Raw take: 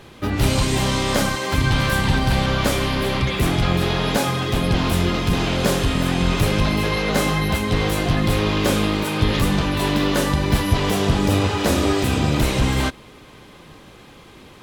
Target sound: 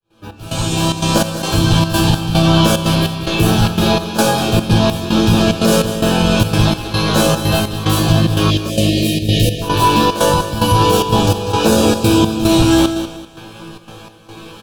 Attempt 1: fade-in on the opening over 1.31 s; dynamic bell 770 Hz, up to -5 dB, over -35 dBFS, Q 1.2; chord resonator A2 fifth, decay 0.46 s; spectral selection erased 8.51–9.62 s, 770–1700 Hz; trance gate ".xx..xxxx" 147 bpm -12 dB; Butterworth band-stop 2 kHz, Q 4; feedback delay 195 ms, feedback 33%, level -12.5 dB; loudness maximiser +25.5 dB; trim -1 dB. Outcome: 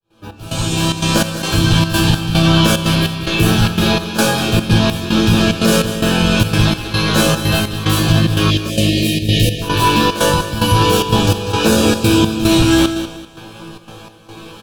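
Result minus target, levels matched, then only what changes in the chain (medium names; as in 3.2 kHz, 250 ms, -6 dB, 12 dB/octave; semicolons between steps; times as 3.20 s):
2 kHz band +3.0 dB
change: dynamic bell 1.9 kHz, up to -5 dB, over -35 dBFS, Q 1.2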